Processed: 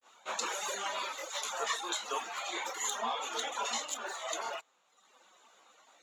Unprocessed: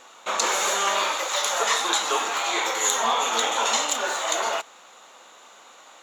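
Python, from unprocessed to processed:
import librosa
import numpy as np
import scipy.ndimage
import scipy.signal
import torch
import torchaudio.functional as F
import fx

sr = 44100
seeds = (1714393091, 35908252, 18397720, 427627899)

y = fx.dereverb_blind(x, sr, rt60_s=1.1)
y = fx.granulator(y, sr, seeds[0], grain_ms=164.0, per_s=20.0, spray_ms=15.0, spread_st=0)
y = y * librosa.db_to_amplitude(-7.0)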